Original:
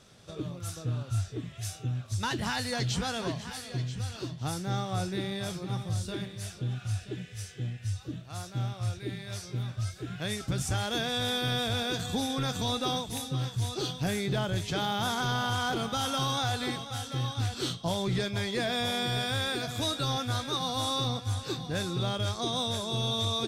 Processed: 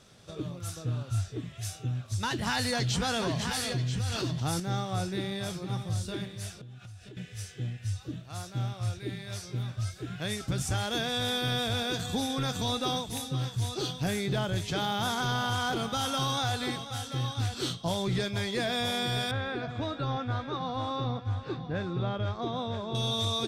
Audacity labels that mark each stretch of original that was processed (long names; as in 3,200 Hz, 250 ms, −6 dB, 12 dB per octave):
2.470000	4.600000	envelope flattener amount 70%
6.610000	7.170000	downward compressor 16 to 1, threshold −43 dBFS
19.310000	22.950000	low-pass filter 2,000 Hz